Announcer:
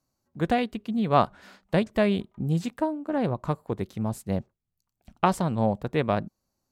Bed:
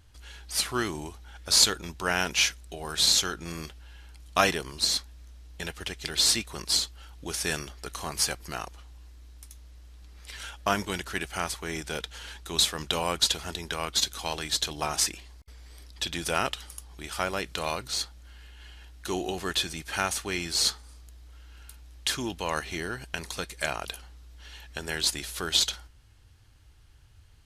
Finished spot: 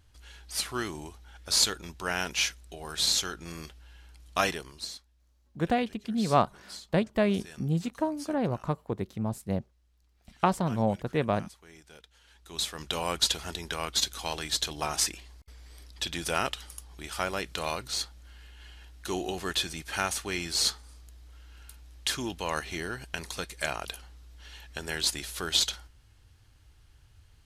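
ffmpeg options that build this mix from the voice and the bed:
ffmpeg -i stem1.wav -i stem2.wav -filter_complex "[0:a]adelay=5200,volume=-2.5dB[link_01];[1:a]volume=13.5dB,afade=type=out:start_time=4.45:duration=0.53:silence=0.177828,afade=type=in:start_time=12.27:duration=0.89:silence=0.133352[link_02];[link_01][link_02]amix=inputs=2:normalize=0" out.wav

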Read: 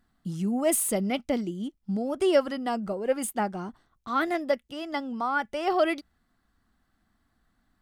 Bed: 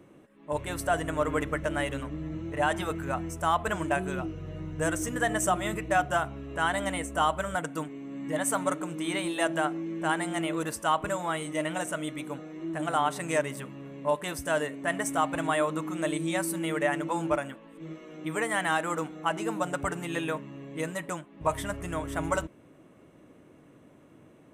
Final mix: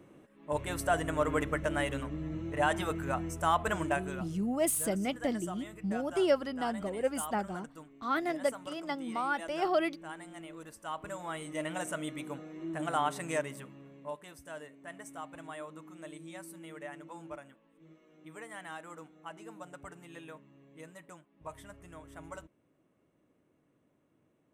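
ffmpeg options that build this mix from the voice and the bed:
ffmpeg -i stem1.wav -i stem2.wav -filter_complex "[0:a]adelay=3950,volume=-5dB[link_01];[1:a]volume=10.5dB,afade=type=out:start_time=3.8:duration=0.74:silence=0.188365,afade=type=in:start_time=10.76:duration=1.15:silence=0.237137,afade=type=out:start_time=13.1:duration=1.17:silence=0.223872[link_02];[link_01][link_02]amix=inputs=2:normalize=0" out.wav

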